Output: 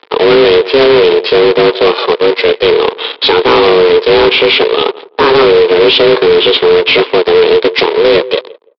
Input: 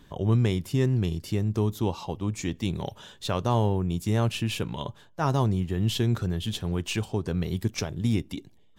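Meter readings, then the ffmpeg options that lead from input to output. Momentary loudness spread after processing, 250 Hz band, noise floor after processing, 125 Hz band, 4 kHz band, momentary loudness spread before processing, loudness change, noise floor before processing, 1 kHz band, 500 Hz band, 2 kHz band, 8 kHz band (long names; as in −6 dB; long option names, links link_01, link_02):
5 LU, +12.5 dB, −39 dBFS, −4.0 dB, +25.0 dB, 7 LU, +19.5 dB, −55 dBFS, +20.5 dB, +27.5 dB, +26.5 dB, can't be measured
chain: -filter_complex "[0:a]highshelf=frequency=2600:gain=-3.5,asplit=2[link_01][link_02];[link_02]acompressor=threshold=-36dB:ratio=8,volume=1.5dB[link_03];[link_01][link_03]amix=inputs=2:normalize=0,acrusher=bits=3:mode=log:mix=0:aa=0.000001,flanger=delay=2.1:depth=9.6:regen=-84:speed=0.86:shape=triangular,aexciter=amount=4.1:drive=6.2:freq=2400,aeval=exprs='val(0)*sin(2*PI*270*n/s)':channel_layout=same,aresample=11025,aeval=exprs='sgn(val(0))*max(abs(val(0))-0.00596,0)':channel_layout=same,aresample=44100,highpass=frequency=370:width=0.5412,highpass=frequency=370:width=1.3066,equalizer=frequency=450:width_type=q:width=4:gain=9,equalizer=frequency=700:width_type=q:width=4:gain=-5,equalizer=frequency=1000:width_type=q:width=4:gain=4,equalizer=frequency=2800:width_type=q:width=4:gain=-5,lowpass=frequency=3400:width=0.5412,lowpass=frequency=3400:width=1.3066,asplit=2[link_04][link_05];[link_05]adelay=169,lowpass=frequency=850:poles=1,volume=-19.5dB,asplit=2[link_06][link_07];[link_07]adelay=169,lowpass=frequency=850:poles=1,volume=0.2[link_08];[link_04][link_06][link_08]amix=inputs=3:normalize=0,apsyclip=31.5dB,volume=-2dB"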